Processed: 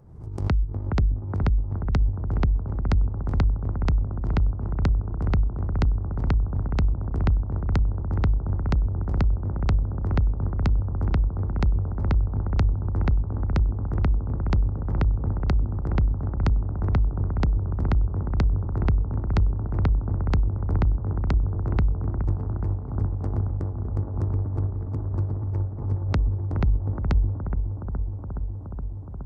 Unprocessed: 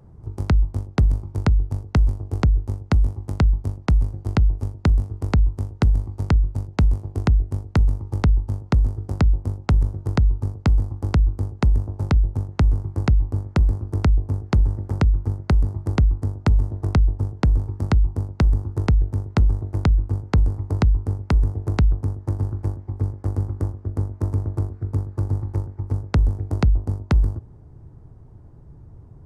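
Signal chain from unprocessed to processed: low-pass that closes with the level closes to 440 Hz, closed at -14 dBFS; vibrato 6.9 Hz 9.2 cents; on a send: bucket-brigade echo 419 ms, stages 4096, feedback 80%, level -7 dB; on the sum: swell ahead of each attack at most 77 dB/s; trim -5.5 dB

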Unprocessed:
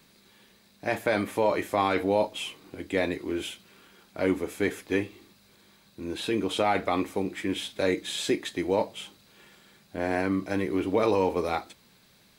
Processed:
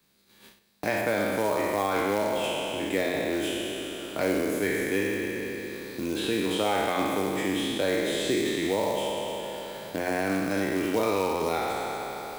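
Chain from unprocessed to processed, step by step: spectral sustain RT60 2.01 s; 1.01–2.44 s: treble shelf 3.2 kHz -7 dB; gate -51 dBFS, range -29 dB; treble shelf 11 kHz +7 dB; de-hum 88.36 Hz, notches 37; short-mantissa float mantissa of 2-bit; three bands compressed up and down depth 70%; trim -3.5 dB

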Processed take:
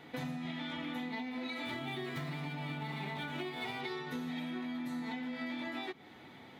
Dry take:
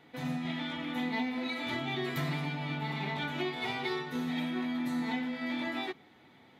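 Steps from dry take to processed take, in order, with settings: 1.65–3.81 s: median filter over 5 samples; compression 12:1, threshold -42 dBFS, peak gain reduction 14 dB; trim +5.5 dB

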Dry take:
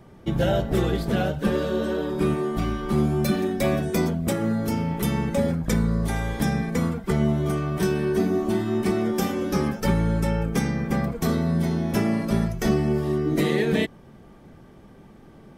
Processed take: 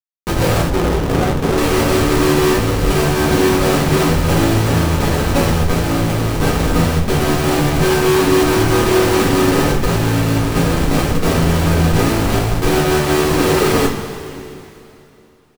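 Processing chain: median filter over 9 samples; comb 2.5 ms, depth 36%; Schmitt trigger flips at -25.5 dBFS; two-slope reverb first 0.26 s, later 2.9 s, from -17 dB, DRR -6 dB; 0.70–1.58 s: sliding maximum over 17 samples; trim +4.5 dB

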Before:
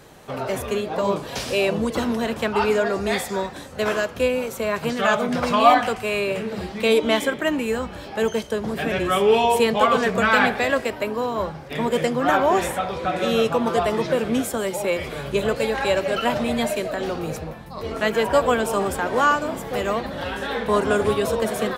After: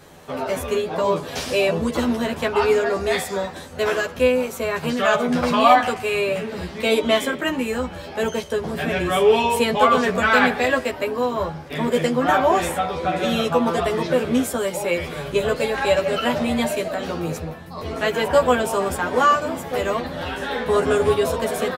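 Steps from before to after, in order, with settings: doubling 12 ms -2 dB; trim -1 dB

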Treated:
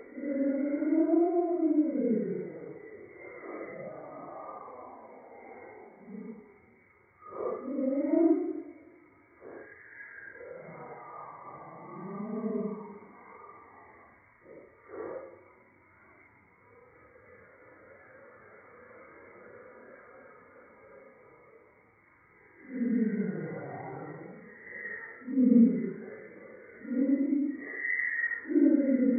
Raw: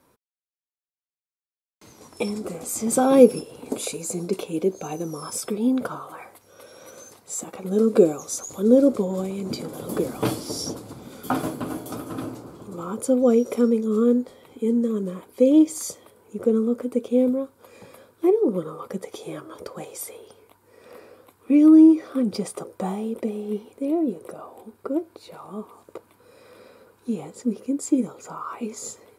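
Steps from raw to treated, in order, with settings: knee-point frequency compression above 1.2 kHz 4:1; flange 0.25 Hz, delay 1.6 ms, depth 9.7 ms, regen +72%; Paulstretch 6.9×, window 0.05 s, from 23.78 s

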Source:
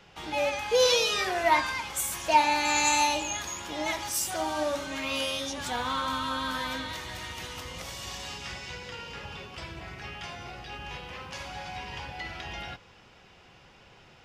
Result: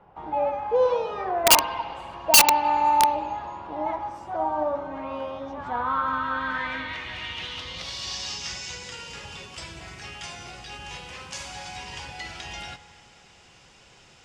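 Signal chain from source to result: low-pass sweep 910 Hz -> 8.2 kHz, 5.41–8.97 s; integer overflow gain 11 dB; treble shelf 4.6 kHz +9 dB; reverberation RT60 2.7 s, pre-delay 49 ms, DRR 15 dB; trim -1 dB

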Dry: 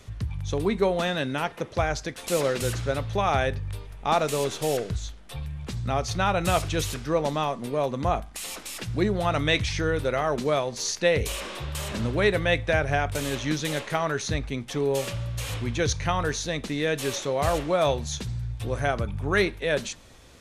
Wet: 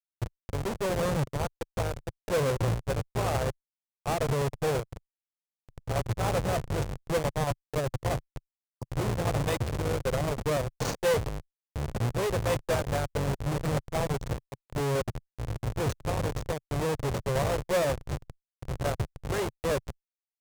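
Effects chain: Schmitt trigger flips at -24.5 dBFS; ten-band graphic EQ 125 Hz +10 dB, 250 Hz -4 dB, 500 Hz +9 dB, 1 kHz +5 dB, 8 kHz +5 dB; valve stage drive 20 dB, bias 0.3; spectral selection erased 8.53–8.83 s, 1.2–4.5 kHz; upward expansion 2.5:1, over -37 dBFS

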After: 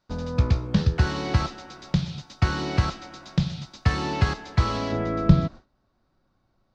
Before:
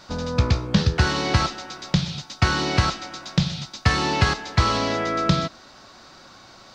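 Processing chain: gate with hold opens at -34 dBFS; tilt EQ -1.5 dB/octave, from 4.91 s -4 dB/octave; trim -6 dB

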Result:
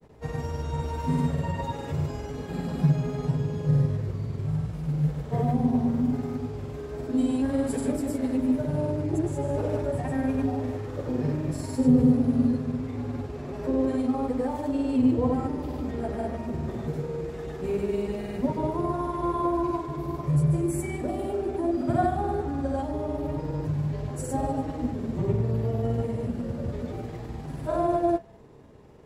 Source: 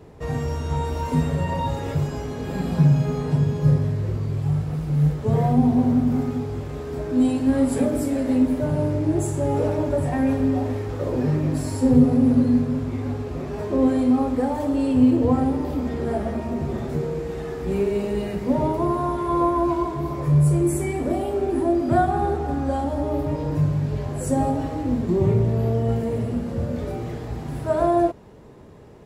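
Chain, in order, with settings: de-hum 96.18 Hz, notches 27; granulator, pitch spread up and down by 0 st; trim -4 dB

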